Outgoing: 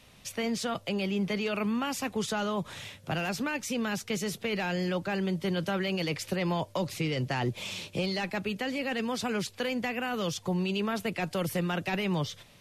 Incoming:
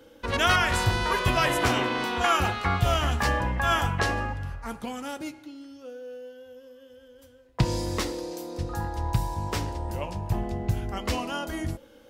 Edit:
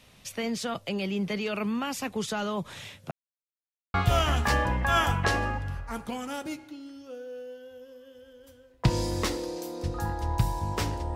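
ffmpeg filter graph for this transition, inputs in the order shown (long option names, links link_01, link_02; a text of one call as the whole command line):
ffmpeg -i cue0.wav -i cue1.wav -filter_complex "[0:a]apad=whole_dur=11.15,atrim=end=11.15,asplit=2[link_01][link_02];[link_01]atrim=end=3.11,asetpts=PTS-STARTPTS,afade=type=out:start_time=3.106:duration=0.004:curve=hsin[link_03];[link_02]atrim=start=3.11:end=3.94,asetpts=PTS-STARTPTS,volume=0[link_04];[1:a]atrim=start=2.69:end=9.9,asetpts=PTS-STARTPTS,afade=type=in:duration=0.004:curve=hsin[link_05];[link_03][link_04][link_05]concat=n=3:v=0:a=1" out.wav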